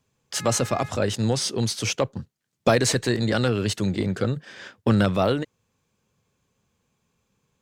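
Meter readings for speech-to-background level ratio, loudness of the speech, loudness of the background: 18.0 dB, -24.0 LUFS, -42.0 LUFS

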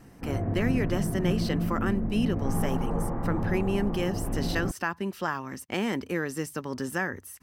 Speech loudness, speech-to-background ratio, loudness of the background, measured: -31.5 LUFS, -0.5 dB, -31.0 LUFS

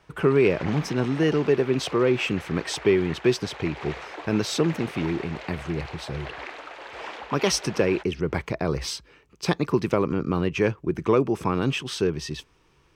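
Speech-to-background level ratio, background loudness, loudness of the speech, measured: 14.0 dB, -39.0 LUFS, -25.0 LUFS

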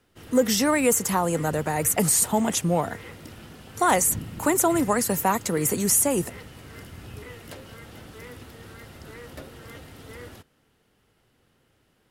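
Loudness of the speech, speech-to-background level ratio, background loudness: -22.5 LUFS, 19.5 dB, -42.0 LUFS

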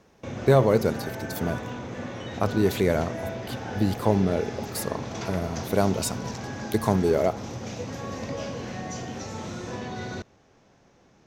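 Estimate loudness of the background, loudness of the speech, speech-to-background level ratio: -35.0 LUFS, -25.5 LUFS, 9.5 dB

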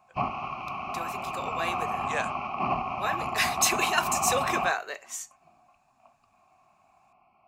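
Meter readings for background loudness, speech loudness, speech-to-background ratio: -31.0 LUFS, -29.5 LUFS, 1.5 dB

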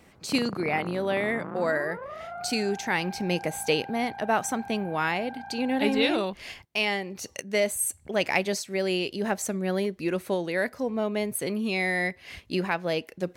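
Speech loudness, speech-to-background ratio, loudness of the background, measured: -28.0 LUFS, 12.0 dB, -40.0 LUFS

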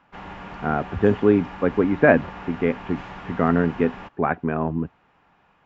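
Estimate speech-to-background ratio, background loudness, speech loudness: 15.5 dB, -38.0 LUFS, -22.5 LUFS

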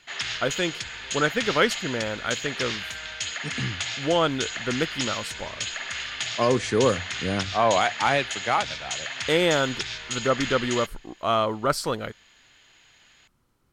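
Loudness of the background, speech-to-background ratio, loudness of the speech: -30.5 LUFS, 4.5 dB, -26.0 LUFS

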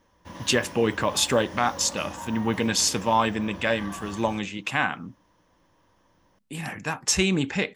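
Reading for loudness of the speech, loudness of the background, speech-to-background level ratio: -25.0 LUFS, -40.5 LUFS, 15.5 dB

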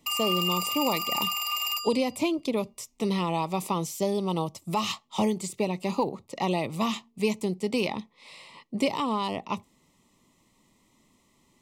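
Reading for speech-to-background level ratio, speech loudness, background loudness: -2.0 dB, -29.5 LUFS, -27.5 LUFS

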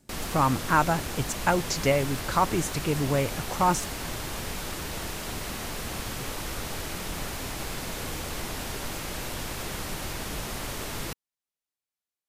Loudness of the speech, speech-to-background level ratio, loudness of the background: -26.5 LUFS, 7.5 dB, -34.0 LUFS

